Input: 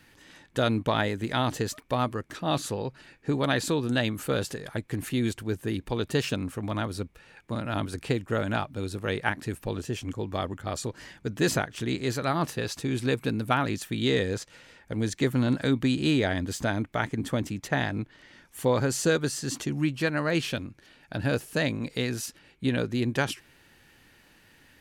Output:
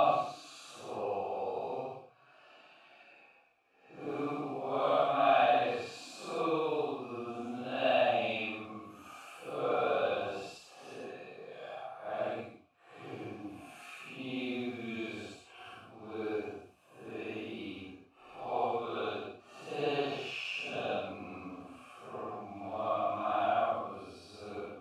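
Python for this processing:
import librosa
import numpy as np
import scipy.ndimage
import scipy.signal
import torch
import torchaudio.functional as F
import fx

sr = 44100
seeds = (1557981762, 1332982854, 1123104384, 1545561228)

y = fx.quant_companded(x, sr, bits=6)
y = fx.vowel_filter(y, sr, vowel='a')
y = fx.paulstretch(y, sr, seeds[0], factor=5.5, window_s=0.1, from_s=2.54)
y = F.gain(torch.from_numpy(y), 8.5).numpy()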